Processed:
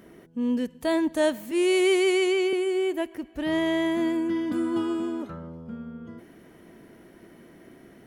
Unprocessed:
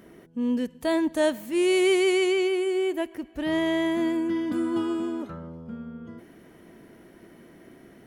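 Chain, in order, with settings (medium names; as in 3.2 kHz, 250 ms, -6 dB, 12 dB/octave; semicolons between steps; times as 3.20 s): 1.51–2.53 s: high-pass 250 Hz 24 dB/octave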